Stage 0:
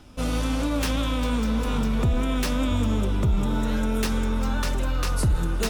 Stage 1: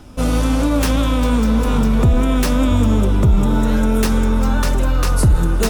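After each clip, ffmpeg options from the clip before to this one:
ffmpeg -i in.wav -af "equalizer=frequency=3200:width=0.63:gain=-5,volume=9dB" out.wav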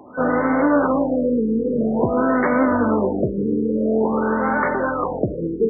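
ffmpeg -i in.wav -af "highpass=350,lowpass=5600,aeval=exprs='val(0)+0.0141*sin(2*PI*1500*n/s)':channel_layout=same,afftfilt=real='re*lt(b*sr/1024,490*pow(2300/490,0.5+0.5*sin(2*PI*0.49*pts/sr)))':imag='im*lt(b*sr/1024,490*pow(2300/490,0.5+0.5*sin(2*PI*0.49*pts/sr)))':win_size=1024:overlap=0.75,volume=5.5dB" out.wav

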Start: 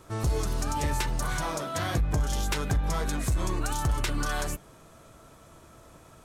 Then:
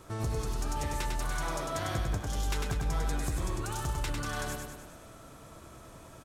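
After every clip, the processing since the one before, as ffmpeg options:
ffmpeg -i in.wav -filter_complex "[0:a]acompressor=threshold=-37dB:ratio=2,asplit=2[link_01][link_02];[link_02]aecho=0:1:100|200|300|400|500|600|700|800:0.631|0.36|0.205|0.117|0.0666|0.038|0.0216|0.0123[link_03];[link_01][link_03]amix=inputs=2:normalize=0" out.wav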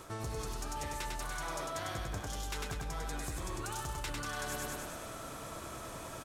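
ffmpeg -i in.wav -af "lowshelf=frequency=340:gain=-7,areverse,acompressor=threshold=-45dB:ratio=6,areverse,volume=8.5dB" out.wav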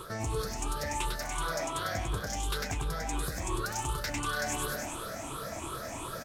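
ffmpeg -i in.wav -af "afftfilt=real='re*pow(10,13/40*sin(2*PI*(0.64*log(max(b,1)*sr/1024/100)/log(2)-(2.8)*(pts-256)/sr)))':imag='im*pow(10,13/40*sin(2*PI*(0.64*log(max(b,1)*sr/1024/100)/log(2)-(2.8)*(pts-256)/sr)))':win_size=1024:overlap=0.75,volume=3.5dB" out.wav

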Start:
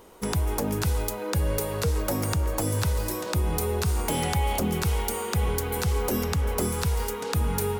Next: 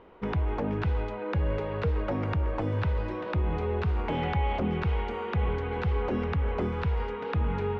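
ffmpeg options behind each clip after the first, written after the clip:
ffmpeg -i in.wav -af "lowpass=frequency=2800:width=0.5412,lowpass=frequency=2800:width=1.3066,volume=-2dB" out.wav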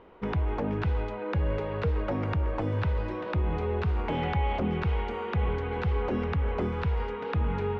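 ffmpeg -i in.wav -af anull out.wav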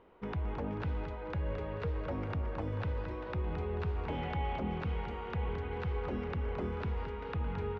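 ffmpeg -i in.wav -af "aecho=1:1:219|438|657|876:0.355|0.142|0.0568|0.0227,volume=-8dB" out.wav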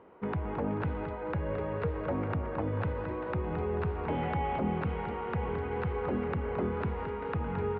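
ffmpeg -i in.wav -af "highpass=100,lowpass=2100,volume=6dB" out.wav

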